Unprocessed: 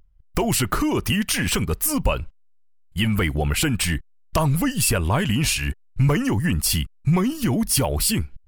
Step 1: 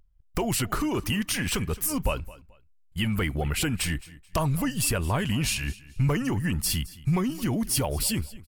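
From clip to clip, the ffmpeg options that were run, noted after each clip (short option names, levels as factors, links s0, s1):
-af "aecho=1:1:217|434:0.106|0.0275,volume=0.531"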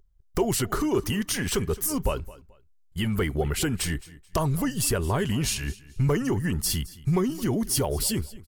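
-af "equalizer=f=400:t=o:w=0.33:g=9,equalizer=f=2500:t=o:w=0.33:g=-7,equalizer=f=6300:t=o:w=0.33:g=3"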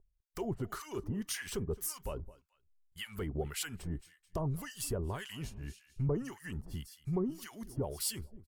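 -filter_complex "[0:a]acrossover=split=990[s0][s1];[s0]aeval=exprs='val(0)*(1-1/2+1/2*cos(2*PI*1.8*n/s))':c=same[s2];[s1]aeval=exprs='val(0)*(1-1/2-1/2*cos(2*PI*1.8*n/s))':c=same[s3];[s2][s3]amix=inputs=2:normalize=0,volume=0.398"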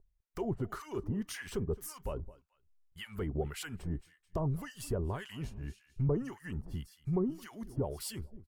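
-af "highshelf=f=2600:g=-9.5,volume=1.26"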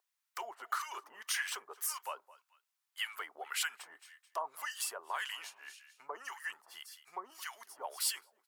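-af "highpass=f=900:w=0.5412,highpass=f=900:w=1.3066,volume=2.66"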